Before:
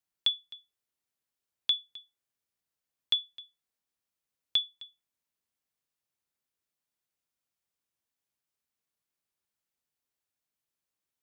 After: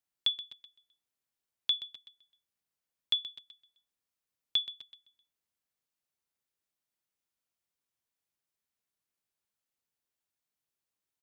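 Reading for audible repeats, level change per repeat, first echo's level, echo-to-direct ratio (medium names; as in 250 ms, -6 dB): 3, -5.5 dB, -14.0 dB, -12.5 dB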